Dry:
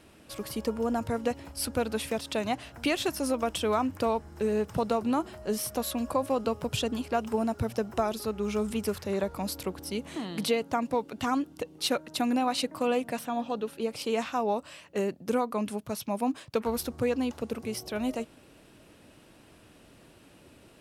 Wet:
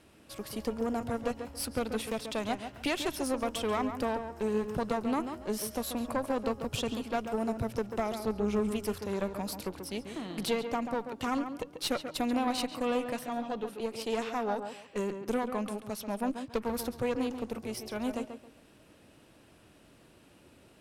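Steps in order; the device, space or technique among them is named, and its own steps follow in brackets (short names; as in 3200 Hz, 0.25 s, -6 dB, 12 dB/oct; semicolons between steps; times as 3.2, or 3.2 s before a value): 8.18–8.69 tilt shelf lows +4 dB, about 1200 Hz; rockabilly slapback (tube stage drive 21 dB, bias 0.7; tape echo 0.138 s, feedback 27%, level -7 dB, low-pass 2500 Hz)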